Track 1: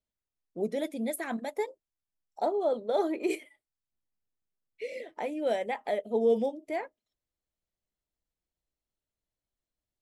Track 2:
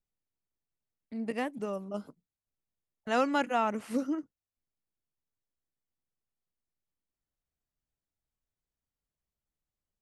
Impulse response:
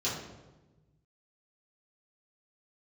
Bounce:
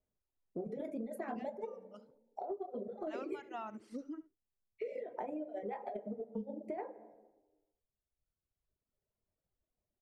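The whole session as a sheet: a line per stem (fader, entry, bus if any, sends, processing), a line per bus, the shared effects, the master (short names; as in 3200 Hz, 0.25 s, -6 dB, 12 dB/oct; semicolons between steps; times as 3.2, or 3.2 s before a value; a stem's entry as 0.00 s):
-2.5 dB, 0.00 s, send -8.5 dB, no echo send, EQ curve 310 Hz 0 dB, 570 Hz +4 dB, 2400 Hz -9 dB, 3600 Hz -19 dB; negative-ratio compressor -31 dBFS, ratio -0.5
-10.5 dB, 0.00 s, no send, echo send -9.5 dB, LPF 6200 Hz 12 dB/oct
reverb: on, RT60 1.2 s, pre-delay 3 ms
echo: echo 72 ms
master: reverb removal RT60 1.7 s; compressor 6:1, threshold -38 dBFS, peak gain reduction 13 dB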